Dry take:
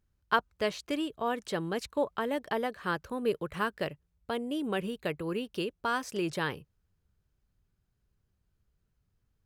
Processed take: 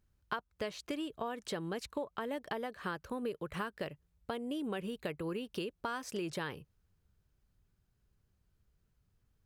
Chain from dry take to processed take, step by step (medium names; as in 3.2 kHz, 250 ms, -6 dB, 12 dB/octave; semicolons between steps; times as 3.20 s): compression 6:1, threshold -36 dBFS, peak gain reduction 15.5 dB; trim +1 dB